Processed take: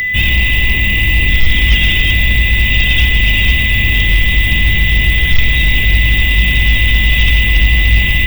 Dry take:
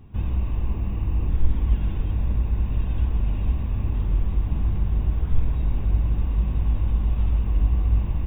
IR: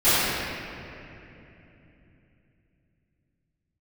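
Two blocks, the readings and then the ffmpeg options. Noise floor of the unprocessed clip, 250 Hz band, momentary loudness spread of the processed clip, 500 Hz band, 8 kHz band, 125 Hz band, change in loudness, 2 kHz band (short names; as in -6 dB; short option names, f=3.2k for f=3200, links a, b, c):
-27 dBFS, +9.5 dB, 1 LU, +10.0 dB, n/a, +9.5 dB, +14.5 dB, +40.0 dB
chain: -af "aexciter=amount=14.9:drive=9.2:freq=2.1k,aeval=exprs='val(0)+0.0631*sin(2*PI*2000*n/s)':c=same,aeval=exprs='0.668*sin(PI/2*1.78*val(0)/0.668)':c=same,volume=1.5dB"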